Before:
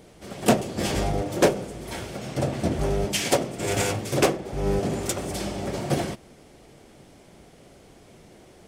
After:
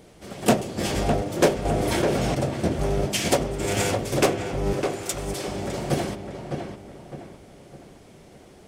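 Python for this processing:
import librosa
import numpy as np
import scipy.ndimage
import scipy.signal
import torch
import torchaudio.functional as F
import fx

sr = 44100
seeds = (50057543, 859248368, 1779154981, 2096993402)

y = fx.highpass(x, sr, hz=950.0, slope=6, at=(4.73, 5.48))
y = fx.echo_filtered(y, sr, ms=607, feedback_pct=41, hz=2500.0, wet_db=-6.0)
y = fx.env_flatten(y, sr, amount_pct=70, at=(1.65, 2.35))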